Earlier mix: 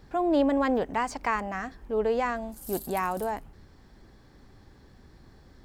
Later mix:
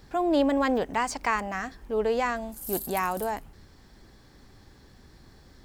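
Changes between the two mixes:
speech: add high-shelf EQ 2,600 Hz +7.5 dB
background: add high-shelf EQ 9,000 Hz +8.5 dB

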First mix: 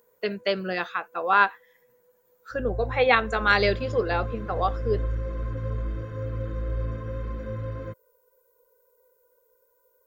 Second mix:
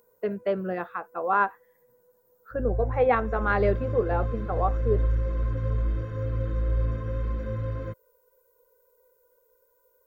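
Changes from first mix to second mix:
speech: add low-pass filter 1,100 Hz 12 dB per octave
master: add low-shelf EQ 85 Hz +6 dB

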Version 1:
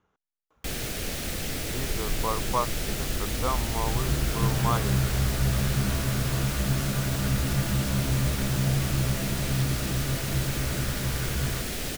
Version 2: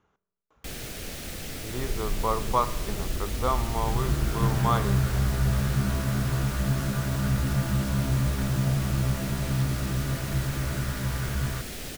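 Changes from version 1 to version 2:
first sound −5.0 dB
reverb: on, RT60 1.0 s

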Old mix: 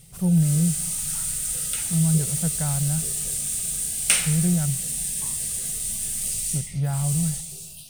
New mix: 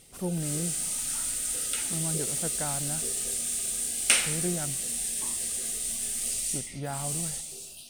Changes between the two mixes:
background: add high-shelf EQ 11,000 Hz −10 dB
master: add low shelf with overshoot 210 Hz −8.5 dB, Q 3

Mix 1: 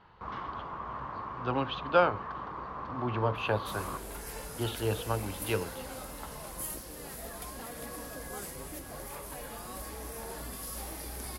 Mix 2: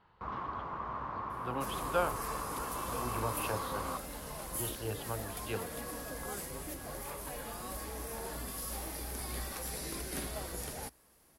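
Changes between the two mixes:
speech −7.5 dB
second sound: entry −2.05 s

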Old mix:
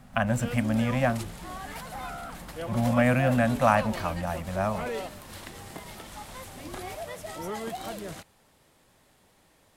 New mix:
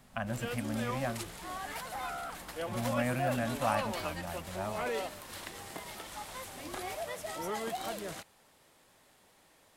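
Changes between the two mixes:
speech −10.5 dB
background: add low-shelf EQ 240 Hz −9 dB

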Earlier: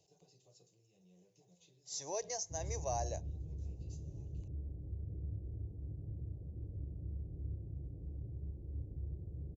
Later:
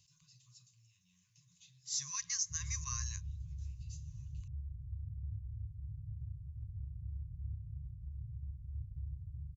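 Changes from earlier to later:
speech +6.0 dB
master: add linear-phase brick-wall band-stop 160–1,000 Hz

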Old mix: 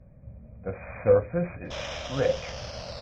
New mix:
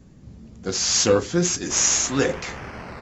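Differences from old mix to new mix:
speech: remove linear-phase brick-wall low-pass 2,500 Hz
master: remove drawn EQ curve 110 Hz 0 dB, 380 Hz −16 dB, 570 Hz +7 dB, 840 Hz −7 dB, 2,100 Hz −10 dB, 3,300 Hz +8 dB, 5,300 Hz +13 dB, 8,600 Hz −4 dB

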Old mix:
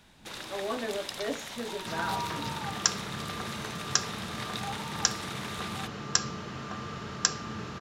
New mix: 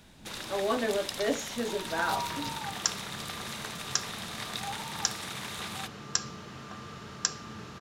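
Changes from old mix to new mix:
speech +4.5 dB
second sound −5.5 dB
master: add high-shelf EQ 5,300 Hz +4.5 dB

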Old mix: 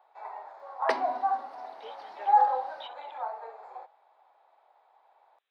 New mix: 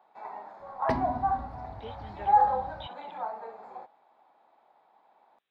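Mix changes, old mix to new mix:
second sound −7.5 dB
master: remove high-pass filter 460 Hz 24 dB per octave

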